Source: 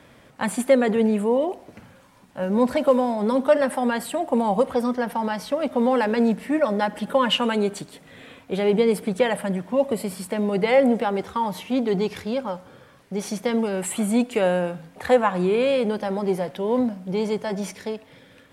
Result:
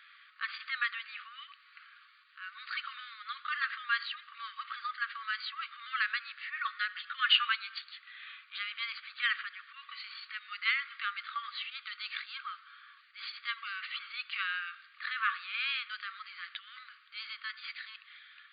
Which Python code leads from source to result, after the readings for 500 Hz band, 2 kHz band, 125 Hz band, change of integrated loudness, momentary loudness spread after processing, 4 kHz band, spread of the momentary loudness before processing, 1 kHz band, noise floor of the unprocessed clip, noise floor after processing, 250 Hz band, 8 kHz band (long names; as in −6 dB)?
below −40 dB, −1.0 dB, below −40 dB, −12.5 dB, 15 LU, −1.5 dB, 10 LU, −13.0 dB, −52 dBFS, −61 dBFS, below −40 dB, below −40 dB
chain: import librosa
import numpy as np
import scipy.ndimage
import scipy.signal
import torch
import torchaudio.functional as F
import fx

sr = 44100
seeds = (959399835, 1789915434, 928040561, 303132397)

y = fx.transient(x, sr, attack_db=-7, sustain_db=1)
y = fx.brickwall_bandpass(y, sr, low_hz=1100.0, high_hz=4800.0)